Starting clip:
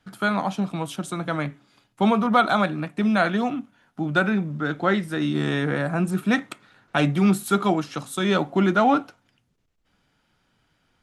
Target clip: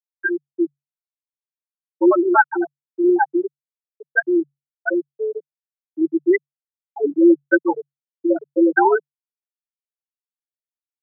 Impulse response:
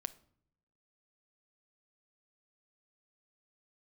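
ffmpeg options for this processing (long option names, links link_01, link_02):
-af "afftfilt=real='re*gte(hypot(re,im),0.708)':imag='im*gte(hypot(re,im),0.708)':win_size=1024:overlap=0.75,aecho=1:1:4.3:0.74,afreqshift=140,volume=3dB"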